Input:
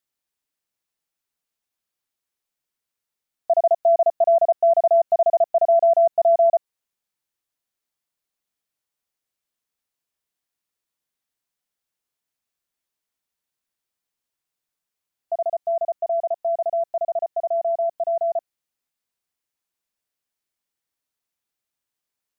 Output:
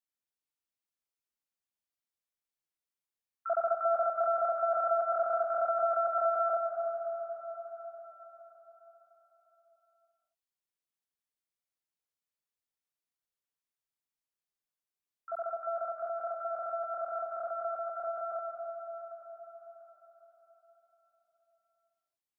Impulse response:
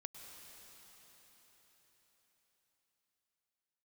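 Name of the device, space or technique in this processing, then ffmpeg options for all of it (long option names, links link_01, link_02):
shimmer-style reverb: -filter_complex "[0:a]asplit=3[link_01][link_02][link_03];[link_01]afade=type=out:start_time=3.75:duration=0.02[link_04];[link_02]aemphasis=mode=reproduction:type=50kf,afade=type=in:start_time=3.75:duration=0.02,afade=type=out:start_time=4.49:duration=0.02[link_05];[link_03]afade=type=in:start_time=4.49:duration=0.02[link_06];[link_04][link_05][link_06]amix=inputs=3:normalize=0,asplit=2[link_07][link_08];[link_08]asetrate=88200,aresample=44100,atempo=0.5,volume=-7dB[link_09];[link_07][link_09]amix=inputs=2:normalize=0[link_10];[1:a]atrim=start_sample=2205[link_11];[link_10][link_11]afir=irnorm=-1:irlink=0,volume=-7dB"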